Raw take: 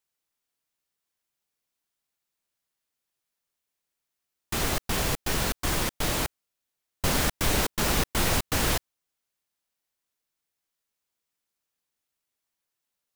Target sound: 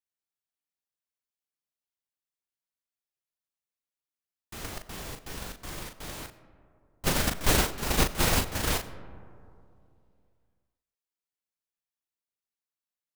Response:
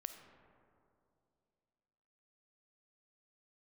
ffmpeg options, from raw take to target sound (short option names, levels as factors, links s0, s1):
-filter_complex "[0:a]agate=range=0.112:threshold=0.0794:ratio=16:detection=peak,asplit=2[s0][s1];[1:a]atrim=start_sample=2205,adelay=39[s2];[s1][s2]afir=irnorm=-1:irlink=0,volume=0.75[s3];[s0][s3]amix=inputs=2:normalize=0,volume=1.88"